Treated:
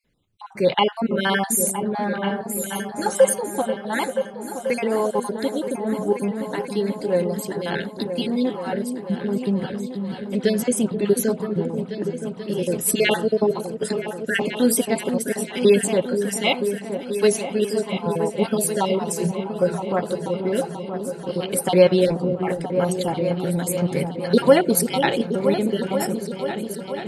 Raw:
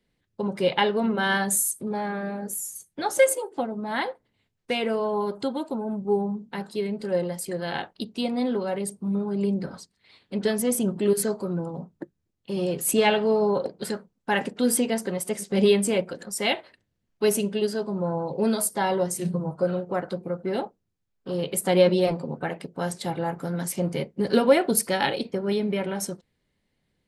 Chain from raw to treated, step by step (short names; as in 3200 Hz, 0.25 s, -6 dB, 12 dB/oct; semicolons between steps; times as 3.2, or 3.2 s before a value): random spectral dropouts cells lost 35%; repeats that get brighter 0.485 s, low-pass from 400 Hz, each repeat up 2 oct, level -6 dB; gain +4.5 dB